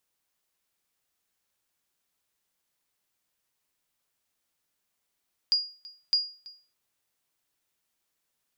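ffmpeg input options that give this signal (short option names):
-f lavfi -i "aevalsrc='0.15*(sin(2*PI*4850*mod(t,0.61))*exp(-6.91*mod(t,0.61)/0.38)+0.0841*sin(2*PI*4850*max(mod(t,0.61)-0.33,0))*exp(-6.91*max(mod(t,0.61)-0.33,0)/0.38))':d=1.22:s=44100"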